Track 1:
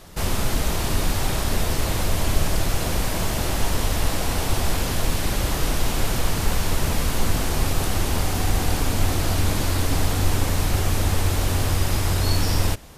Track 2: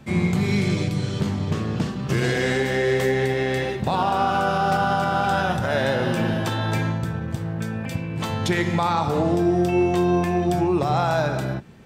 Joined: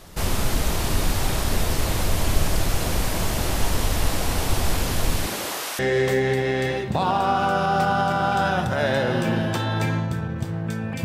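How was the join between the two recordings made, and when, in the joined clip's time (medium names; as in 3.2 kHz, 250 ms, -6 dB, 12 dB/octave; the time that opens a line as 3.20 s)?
track 1
5.25–5.79 s: high-pass 170 Hz -> 1 kHz
5.79 s: go over to track 2 from 2.71 s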